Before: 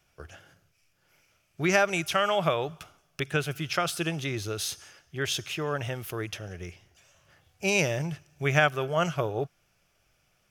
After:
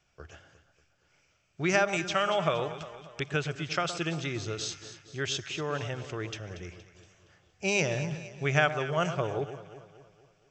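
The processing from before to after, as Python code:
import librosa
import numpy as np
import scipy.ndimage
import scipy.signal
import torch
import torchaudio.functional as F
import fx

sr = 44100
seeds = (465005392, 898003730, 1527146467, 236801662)

y = fx.brickwall_lowpass(x, sr, high_hz=8100.0)
y = fx.echo_alternate(y, sr, ms=117, hz=1300.0, feedback_pct=69, wet_db=-10)
y = y * librosa.db_to_amplitude(-2.5)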